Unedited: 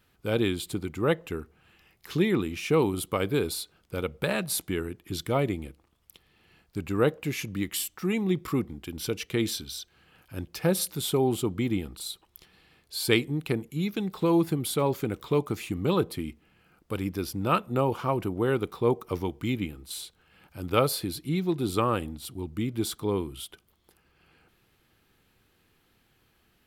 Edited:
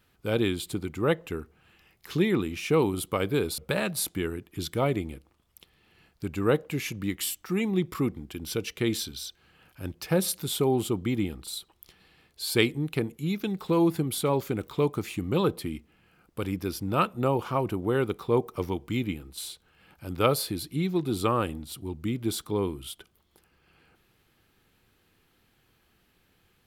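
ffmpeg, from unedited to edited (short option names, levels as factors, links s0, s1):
-filter_complex "[0:a]asplit=2[s0][s1];[s0]atrim=end=3.582[s2];[s1]atrim=start=4.108[s3];[s2][s3]acrossfade=d=0.004:c1=hsin:c2=hsin"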